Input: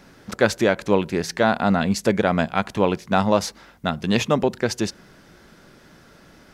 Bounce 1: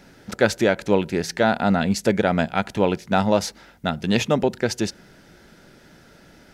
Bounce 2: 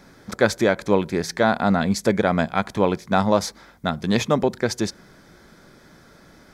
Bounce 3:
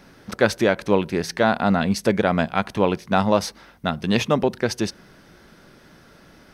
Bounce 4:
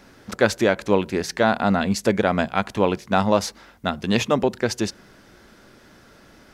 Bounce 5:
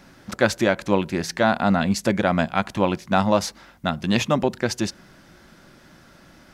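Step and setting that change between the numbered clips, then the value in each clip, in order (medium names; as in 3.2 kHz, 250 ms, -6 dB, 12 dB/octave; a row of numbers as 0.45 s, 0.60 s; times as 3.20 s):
band-stop, frequency: 1.1 kHz, 2.8 kHz, 7.2 kHz, 160 Hz, 440 Hz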